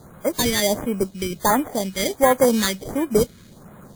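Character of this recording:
aliases and images of a low sample rate 2,700 Hz, jitter 0%
phaser sweep stages 2, 1.4 Hz, lowest notch 740–4,700 Hz
WMA

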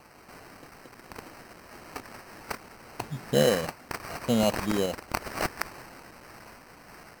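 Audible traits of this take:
a quantiser's noise floor 8 bits, dither triangular
sample-and-hold tremolo
aliases and images of a low sample rate 3,500 Hz, jitter 0%
MP3

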